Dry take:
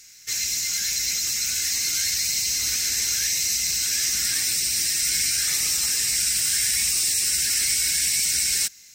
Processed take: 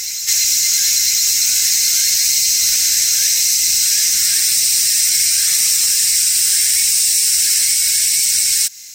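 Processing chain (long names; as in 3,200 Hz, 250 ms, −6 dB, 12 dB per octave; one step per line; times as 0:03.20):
high-shelf EQ 2,300 Hz +11.5 dB
downward compressor, threshold −15 dBFS, peak gain reduction 6.5 dB
on a send: backwards echo 1,003 ms −8.5 dB
on the sum: level +3.5 dB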